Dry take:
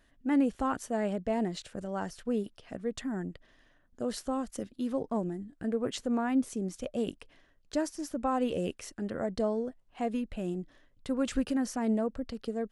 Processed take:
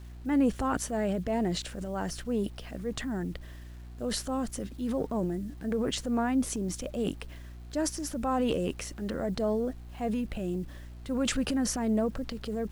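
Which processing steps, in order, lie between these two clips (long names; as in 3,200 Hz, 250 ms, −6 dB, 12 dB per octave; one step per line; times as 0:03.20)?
transient designer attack −4 dB, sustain +8 dB
hum with harmonics 60 Hz, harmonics 6, −46 dBFS −9 dB per octave
bit-depth reduction 10 bits, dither none
level +1.5 dB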